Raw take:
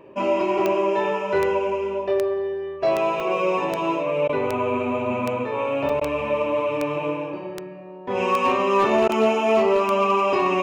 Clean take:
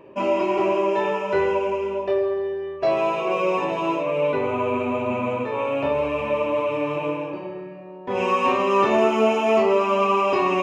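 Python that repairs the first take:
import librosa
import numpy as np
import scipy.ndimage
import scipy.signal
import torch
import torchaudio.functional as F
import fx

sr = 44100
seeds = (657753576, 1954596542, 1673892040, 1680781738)

y = fx.fix_declip(x, sr, threshold_db=-11.5)
y = fx.fix_declick_ar(y, sr, threshold=10.0)
y = fx.fix_interpolate(y, sr, at_s=(3.2, 5.89), length_ms=3.7)
y = fx.fix_interpolate(y, sr, at_s=(4.28, 6.0, 9.08), length_ms=11.0)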